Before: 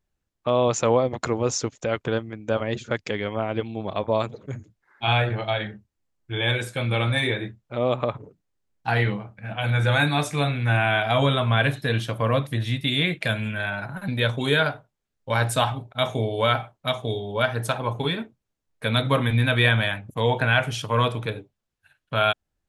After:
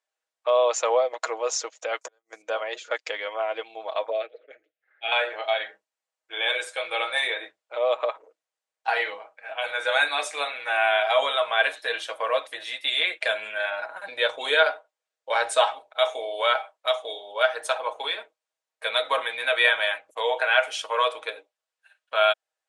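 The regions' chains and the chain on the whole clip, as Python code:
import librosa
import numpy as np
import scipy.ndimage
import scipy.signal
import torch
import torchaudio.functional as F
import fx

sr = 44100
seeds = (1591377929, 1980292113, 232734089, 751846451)

y = fx.chain(x, sr, fx.high_shelf_res(hz=4500.0, db=12.0, q=3.0),
    fx.gate_flip(shuts_db=-19.0, range_db=-39),
    fx.band_squash(depth_pct=100), at=(2.01, 2.42))
y = fx.chain(y, sr, fx.lowpass(hz=3100.0, slope=24),
    fx.fixed_phaser(hz=410.0, stages=4), at=(4.1, 5.12))
y = fx.chain(y, sr, fx.lowpass(hz=10000.0, slope=24),
    fx.low_shelf(hz=410.0, db=7.5), at=(13.22, 15.73))
y = scipy.signal.sosfilt(scipy.signal.ellip(3, 1.0, 50, [560.0, 9300.0], 'bandpass', fs=sr, output='sos'), y)
y = y + 0.48 * np.pad(y, (int(6.3 * sr / 1000.0), 0))[:len(y)]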